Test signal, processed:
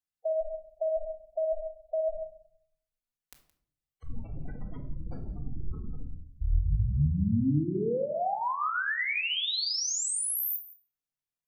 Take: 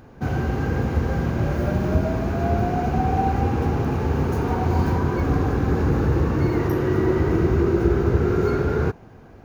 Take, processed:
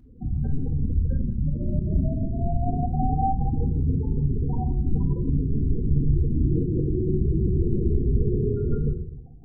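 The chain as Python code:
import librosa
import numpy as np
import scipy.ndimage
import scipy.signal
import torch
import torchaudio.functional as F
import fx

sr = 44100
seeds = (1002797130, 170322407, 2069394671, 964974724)

y = fx.octave_divider(x, sr, octaves=1, level_db=1.0)
y = fx.spec_gate(y, sr, threshold_db=-10, keep='strong')
y = y + 10.0 ** (-19.0 / 20.0) * np.pad(y, (int(170 * sr / 1000.0), 0))[:len(y)]
y = fx.room_shoebox(y, sr, seeds[0], volume_m3=860.0, walls='furnished', distance_m=1.9)
y = y * librosa.db_to_amplitude(-7.5)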